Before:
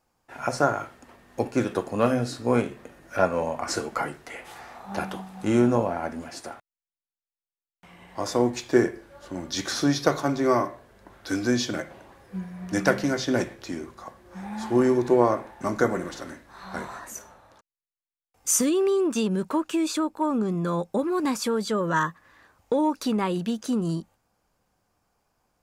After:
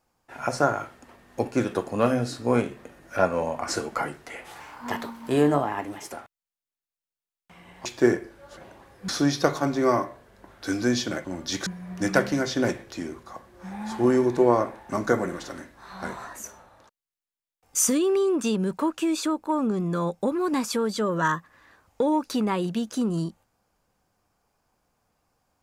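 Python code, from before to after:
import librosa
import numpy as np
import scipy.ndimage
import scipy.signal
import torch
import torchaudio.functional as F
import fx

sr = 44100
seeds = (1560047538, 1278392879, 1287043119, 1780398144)

y = fx.edit(x, sr, fx.speed_span(start_s=4.6, length_s=1.86, speed=1.22),
    fx.cut(start_s=8.19, length_s=0.38),
    fx.swap(start_s=9.29, length_s=0.42, other_s=11.87, other_length_s=0.51), tone=tone)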